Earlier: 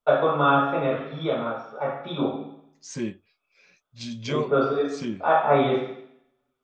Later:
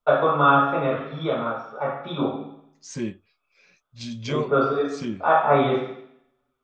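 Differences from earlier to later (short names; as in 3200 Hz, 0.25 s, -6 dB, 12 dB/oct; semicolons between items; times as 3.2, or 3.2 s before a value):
first voice: add bell 1200 Hz +4.5 dB 0.74 oct; master: add low shelf 76 Hz +8 dB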